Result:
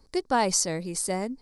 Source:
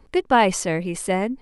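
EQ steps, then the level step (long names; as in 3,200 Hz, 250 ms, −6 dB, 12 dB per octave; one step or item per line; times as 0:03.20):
high shelf with overshoot 3,700 Hz +8 dB, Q 3
−7.0 dB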